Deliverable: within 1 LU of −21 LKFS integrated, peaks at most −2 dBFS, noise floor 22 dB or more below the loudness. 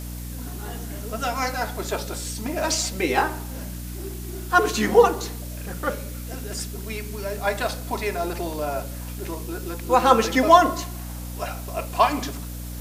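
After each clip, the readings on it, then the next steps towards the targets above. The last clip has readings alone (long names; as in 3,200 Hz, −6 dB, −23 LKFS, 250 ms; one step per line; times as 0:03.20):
mains hum 60 Hz; hum harmonics up to 300 Hz; level of the hum −31 dBFS; background noise floor −34 dBFS; target noise floor −46 dBFS; integrated loudness −24.0 LKFS; sample peak −1.5 dBFS; target loudness −21.0 LKFS
→ hum removal 60 Hz, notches 5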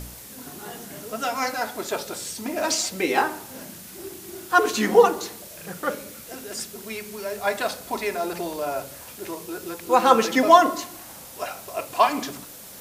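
mains hum none found; background noise floor −42 dBFS; target noise floor −46 dBFS
→ broadband denoise 6 dB, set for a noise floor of −42 dBFS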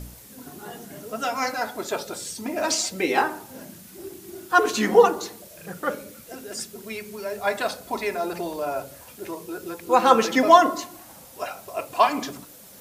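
background noise floor −47 dBFS; integrated loudness −23.5 LKFS; sample peak −1.5 dBFS; target loudness −21.0 LKFS
→ level +2.5 dB
brickwall limiter −2 dBFS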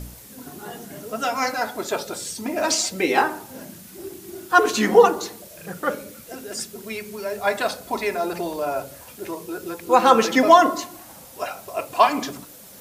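integrated loudness −21.5 LKFS; sample peak −2.0 dBFS; background noise floor −44 dBFS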